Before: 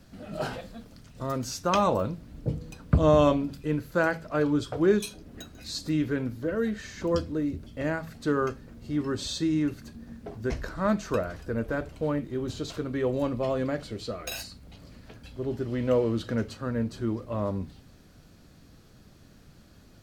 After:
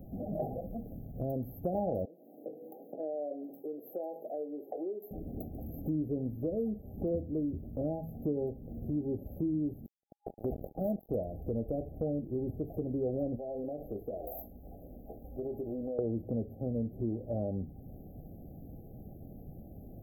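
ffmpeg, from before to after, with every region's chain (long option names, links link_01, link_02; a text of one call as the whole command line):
ffmpeg -i in.wav -filter_complex "[0:a]asettb=1/sr,asplit=3[link_01][link_02][link_03];[link_01]atrim=end=2.054[link_04];[link_02]atrim=start=2.05:end=5.11,asetpts=PTS-STARTPTS,afade=type=in:duration=0.004:curve=qsin,afade=type=out:start_time=3.056:duration=0.004:curve=qsin,acompressor=threshold=-40dB:ratio=2.5:attack=3.2:release=140:knee=1:detection=peak,highpass=frequency=350:width=0.5412,highpass=frequency=350:width=1.3066,asplit=2[link_05][link_06];[link_06]adelay=22,volume=-14dB[link_07];[link_05][link_07]amix=inputs=2:normalize=0,atrim=end_sample=134946[link_08];[link_03]atrim=start=5.106[link_09];[link_04][link_08]acrossfade=duration=0.004:curve1=hsin:curve2=qsin[link_10];[link_10][link_09]acrossfade=duration=0.004:curve1=qsin:curve2=hsin,asettb=1/sr,asplit=3[link_11][link_12][link_13];[link_11]atrim=end=9.864[link_14];[link_12]atrim=start=9.86:end=11.09,asetpts=PTS-STARTPTS,afade=type=in:duration=0.004:curve=qsin,afade=type=out:start_time=1.226:duration=0.004:curve=qsin,acrusher=bits=4:mix=0:aa=0.5,lowshelf=frequency=150:gain=-5.5[link_15];[link_13]atrim=start=11.086[link_16];[link_14][link_15]acrossfade=duration=0.004:curve1=hsin:curve2=qsin[link_17];[link_17][link_16]acrossfade=duration=0.004:curve1=qsin:curve2=hsin,asettb=1/sr,asplit=3[link_18][link_19][link_20];[link_18]atrim=end=13.364[link_21];[link_19]atrim=start=13.36:end=15.99,asetpts=PTS-STARTPTS,afade=type=in:duration=0.004:curve=qsin,afade=type=out:start_time=2.626:duration=0.004:curve=qsin,equalizer=frequency=110:width_type=o:width=2.3:gain=-13,acompressor=threshold=-35dB:ratio=16:attack=3.2:release=140:knee=1:detection=peak,asplit=2[link_22][link_23];[link_23]adelay=20,volume=-8.5dB[link_24];[link_22][link_24]amix=inputs=2:normalize=0,atrim=end_sample=115983[link_25];[link_20]atrim=start=15.986[link_26];[link_21][link_25]acrossfade=duration=0.004:curve1=hsin:curve2=qsin[link_27];[link_27][link_26]acrossfade=duration=0.004:curve1=qsin:curve2=hsin,afftfilt=real='re*(1-between(b*sr/4096,820,12000))':imag='im*(1-between(b*sr/4096,820,12000))':win_size=4096:overlap=0.75,acompressor=threshold=-43dB:ratio=2.5,volume=6.5dB" out.wav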